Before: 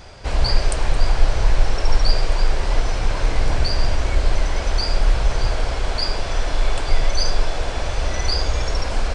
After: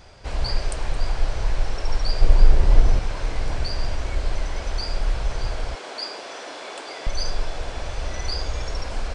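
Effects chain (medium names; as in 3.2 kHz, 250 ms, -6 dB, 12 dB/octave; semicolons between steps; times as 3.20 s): 2.21–2.99 s: bass shelf 450 Hz +11.5 dB; 5.75–7.07 s: high-pass 260 Hz 24 dB/octave; trim -6.5 dB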